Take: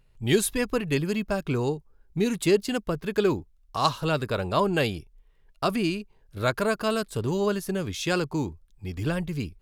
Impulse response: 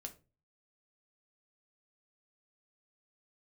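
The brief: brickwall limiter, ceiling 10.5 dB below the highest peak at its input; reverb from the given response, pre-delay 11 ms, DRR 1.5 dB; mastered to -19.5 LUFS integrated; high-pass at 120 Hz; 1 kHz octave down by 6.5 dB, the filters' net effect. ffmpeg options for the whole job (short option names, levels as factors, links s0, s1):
-filter_complex "[0:a]highpass=120,equalizer=f=1000:t=o:g=-8.5,alimiter=limit=0.119:level=0:latency=1,asplit=2[s0][s1];[1:a]atrim=start_sample=2205,adelay=11[s2];[s1][s2]afir=irnorm=-1:irlink=0,volume=1.41[s3];[s0][s3]amix=inputs=2:normalize=0,volume=2.51"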